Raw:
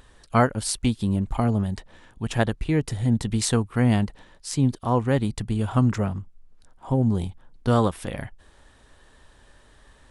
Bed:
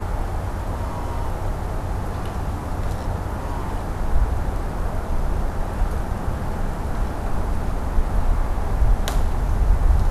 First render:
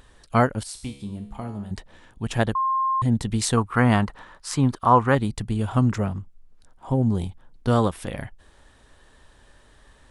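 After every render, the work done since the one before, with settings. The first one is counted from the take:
0:00.63–0:01.71: tuned comb filter 69 Hz, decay 0.71 s, mix 80%
0:02.55–0:03.02: beep over 1,060 Hz −19.5 dBFS
0:03.57–0:05.15: parametric band 1,200 Hz +13.5 dB 1.3 octaves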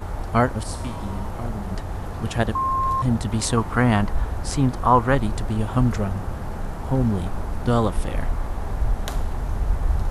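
mix in bed −4.5 dB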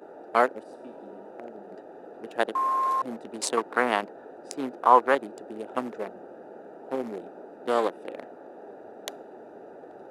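adaptive Wiener filter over 41 samples
high-pass filter 350 Hz 24 dB per octave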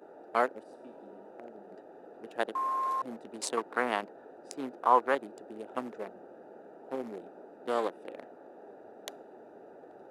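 level −6 dB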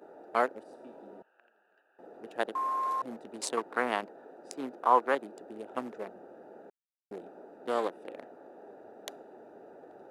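0:01.22–0:01.99: pair of resonant band-passes 2,100 Hz, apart 0.73 octaves
0:04.09–0:05.43: high-pass filter 130 Hz 24 dB per octave
0:06.70–0:07.11: silence

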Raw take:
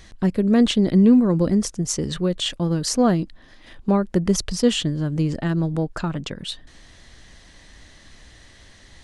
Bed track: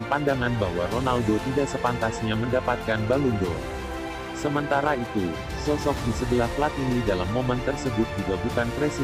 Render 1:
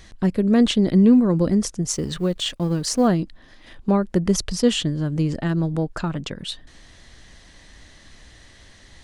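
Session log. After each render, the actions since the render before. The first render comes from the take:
0:01.92–0:03.08: mu-law and A-law mismatch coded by A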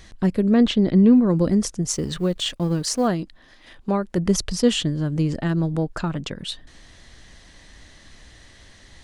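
0:00.50–0:01.27: high-frequency loss of the air 100 metres
0:02.82–0:04.18: low-shelf EQ 360 Hz −6 dB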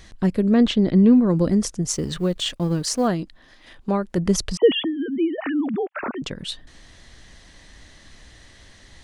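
0:04.57–0:06.22: three sine waves on the formant tracks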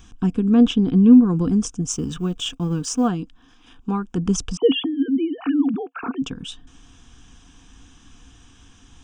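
phaser with its sweep stopped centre 2,900 Hz, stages 8
hollow resonant body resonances 270/480/710 Hz, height 11 dB, ringing for 75 ms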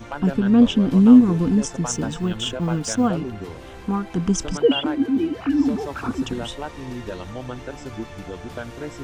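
mix in bed track −8 dB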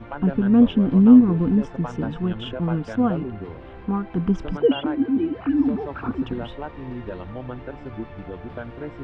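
high-frequency loss of the air 440 metres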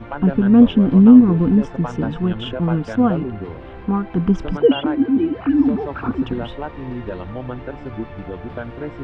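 level +4.5 dB
brickwall limiter −1 dBFS, peak gain reduction 3 dB

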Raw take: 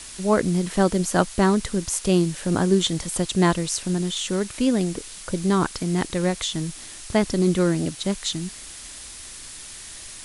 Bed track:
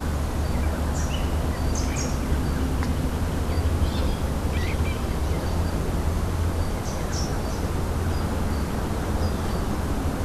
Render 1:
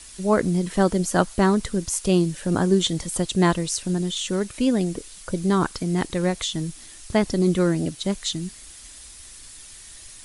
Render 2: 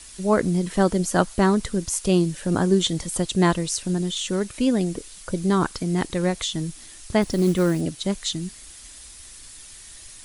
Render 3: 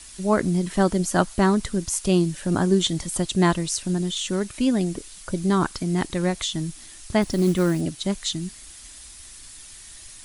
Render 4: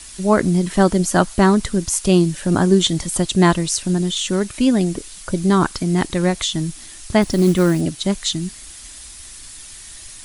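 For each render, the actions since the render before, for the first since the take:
broadband denoise 7 dB, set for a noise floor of −40 dBFS
0:07.22–0:07.81: log-companded quantiser 6 bits
parametric band 480 Hz −8.5 dB 0.21 octaves
level +5.5 dB; brickwall limiter −1 dBFS, peak gain reduction 1.5 dB

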